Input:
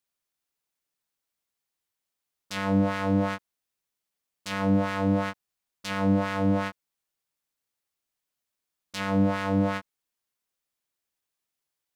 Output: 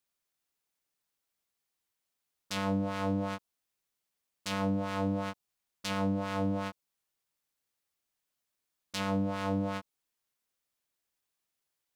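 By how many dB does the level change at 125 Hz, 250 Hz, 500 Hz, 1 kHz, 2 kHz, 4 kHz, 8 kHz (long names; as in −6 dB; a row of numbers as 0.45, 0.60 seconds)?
−7.0, −7.0, −6.0, −5.5, −7.5, −2.0, −1.0 decibels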